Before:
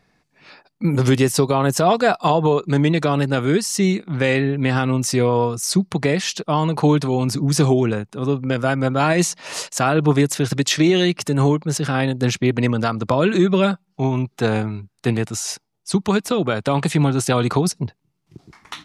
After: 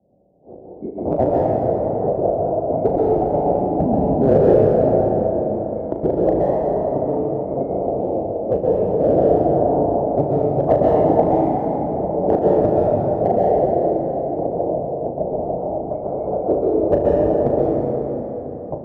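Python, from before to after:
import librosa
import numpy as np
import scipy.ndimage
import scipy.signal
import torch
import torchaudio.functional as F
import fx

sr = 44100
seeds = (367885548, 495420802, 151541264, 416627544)

p1 = fx.band_swap(x, sr, width_hz=2000)
p2 = fx.hpss(p1, sr, part='percussive', gain_db=6)
p3 = fx.tremolo_shape(p2, sr, shape='triangle', hz=1.9, depth_pct=95)
p4 = fx.leveller(p3, sr, passes=3)
p5 = scipy.signal.sosfilt(scipy.signal.butter(8, 720.0, 'lowpass', fs=sr, output='sos'), p4)
p6 = fx.low_shelf(p5, sr, hz=270.0, db=-5.0)
p7 = np.clip(p6, -10.0 ** (-19.5 / 20.0), 10.0 ** (-19.5 / 20.0))
p8 = p6 + (p7 * librosa.db_to_amplitude(-10.0))
p9 = scipy.signal.sosfilt(scipy.signal.butter(2, 67.0, 'highpass', fs=sr, output='sos'), p8)
p10 = fx.room_flutter(p9, sr, wall_m=6.3, rt60_s=0.3)
p11 = fx.rev_plate(p10, sr, seeds[0], rt60_s=2.8, hf_ratio=0.7, predelay_ms=110, drr_db=-5.0)
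p12 = fx.band_squash(p11, sr, depth_pct=40)
y = p12 * librosa.db_to_amplitude(4.5)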